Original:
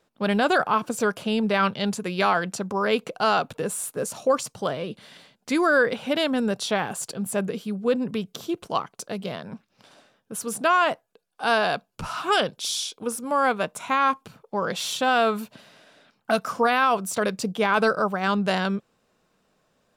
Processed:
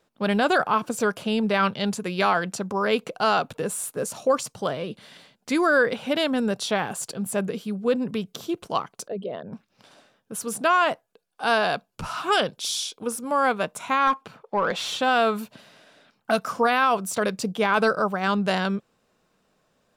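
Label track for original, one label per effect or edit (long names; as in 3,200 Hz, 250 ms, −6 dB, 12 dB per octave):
9.080000	9.530000	spectral envelope exaggerated exponent 2
14.070000	15.010000	mid-hump overdrive drive 13 dB, tone 1,800 Hz, clips at −11 dBFS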